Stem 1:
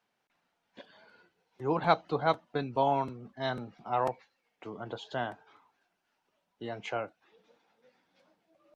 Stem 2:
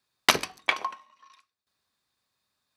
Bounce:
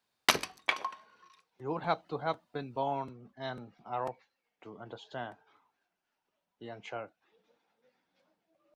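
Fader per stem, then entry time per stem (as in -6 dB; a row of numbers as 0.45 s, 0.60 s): -6.0 dB, -5.0 dB; 0.00 s, 0.00 s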